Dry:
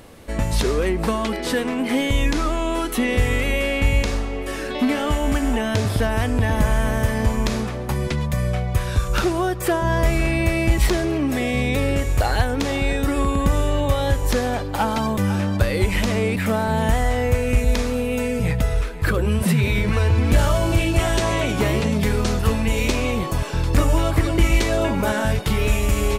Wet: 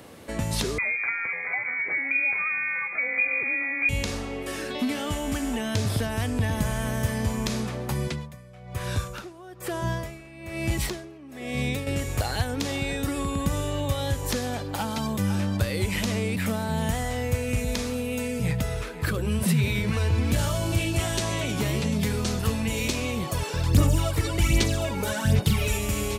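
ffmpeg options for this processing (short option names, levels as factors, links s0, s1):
-filter_complex "[0:a]asettb=1/sr,asplit=3[s0][s1][s2];[s0]atrim=end=0.784[s3];[s1]atrim=start=0.78:end=3.89,asetpts=PTS-STARTPTS,afade=t=in:d=0.004:c=qsin,afade=t=out:st=3.106:d=0.004:c=qsin,lowpass=f=2100:t=q:w=0.5098,lowpass=f=2100:t=q:w=0.6013,lowpass=f=2100:t=q:w=0.9,lowpass=f=2100:t=q:w=2.563,afreqshift=-2500[s4];[s2]atrim=start=3.886[s5];[s3][s4]acrossfade=d=0.004:c1=hsin:c2=qsin[s6];[s6][s5]acrossfade=d=0.004:c1=qsin:c2=hsin,asettb=1/sr,asplit=3[s7][s8][s9];[s7]atrim=end=8.024[s10];[s8]atrim=start=8.02:end=11.87,asetpts=PTS-STARTPTS,afade=t=in:d=0.004:c=qsin,afade=t=out:st=3.846:d=0.004:c=qsin,aeval=exprs='val(0)*pow(10,-23*(0.5-0.5*cos(2*PI*1.1*n/s))/20)':c=same[s11];[s9]atrim=start=11.866[s12];[s10][s11]acrossfade=d=0.004:c1=hsin:c2=qsin[s13];[s13][s12]acrossfade=d=0.004:c1=qsin:c2=hsin,asplit=3[s14][s15][s16];[s14]afade=t=out:st=23.26:d=0.02[s17];[s15]aphaser=in_gain=1:out_gain=1:delay=2.3:decay=0.59:speed=1.3:type=sinusoidal,afade=t=in:st=23.26:d=0.02,afade=t=out:st=25.77:d=0.02[s18];[s16]afade=t=in:st=25.77:d=0.02[s19];[s17][s18][s19]amix=inputs=3:normalize=0,highpass=100,acrossover=split=190|3000[s20][s21][s22];[s21]acompressor=threshold=0.0251:ratio=2.5[s23];[s20][s23][s22]amix=inputs=3:normalize=0,volume=0.891"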